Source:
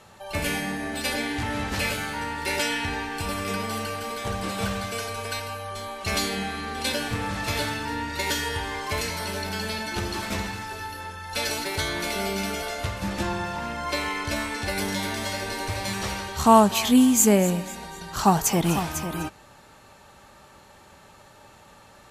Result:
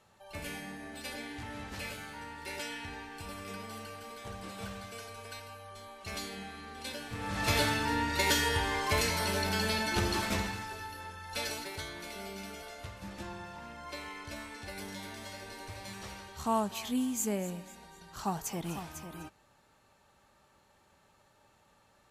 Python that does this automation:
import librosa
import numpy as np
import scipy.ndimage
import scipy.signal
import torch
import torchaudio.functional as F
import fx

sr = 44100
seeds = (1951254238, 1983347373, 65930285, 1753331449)

y = fx.gain(x, sr, db=fx.line((7.08, -14.0), (7.48, -1.0), (10.14, -1.0), (10.84, -8.0), (11.4, -8.0), (11.94, -15.0)))